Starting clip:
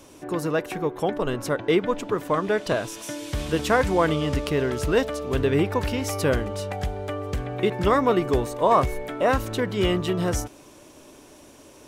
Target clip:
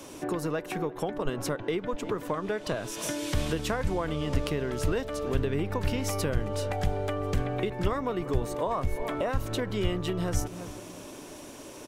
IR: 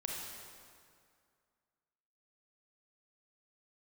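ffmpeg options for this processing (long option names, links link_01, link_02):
-filter_complex "[0:a]asplit=2[link_01][link_02];[link_02]adelay=337,lowpass=frequency=1400:poles=1,volume=-20dB,asplit=2[link_03][link_04];[link_04]adelay=337,lowpass=frequency=1400:poles=1,volume=0.37,asplit=2[link_05][link_06];[link_06]adelay=337,lowpass=frequency=1400:poles=1,volume=0.37[link_07];[link_01][link_03][link_05][link_07]amix=inputs=4:normalize=0,acrossover=split=100[link_08][link_09];[link_08]aeval=exprs='max(val(0),0)':channel_layout=same[link_10];[link_09]acompressor=threshold=-33dB:ratio=6[link_11];[link_10][link_11]amix=inputs=2:normalize=0,volume=4.5dB"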